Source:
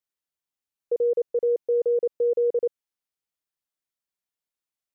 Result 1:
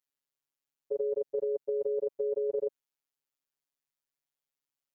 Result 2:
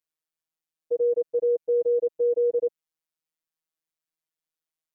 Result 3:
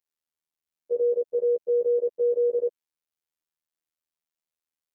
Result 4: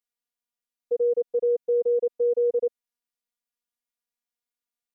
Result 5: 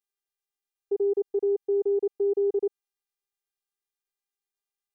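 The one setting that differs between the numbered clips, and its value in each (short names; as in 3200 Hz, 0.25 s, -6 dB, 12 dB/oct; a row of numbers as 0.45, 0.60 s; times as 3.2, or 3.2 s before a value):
robotiser, frequency: 140, 160, 80, 240, 400 Hz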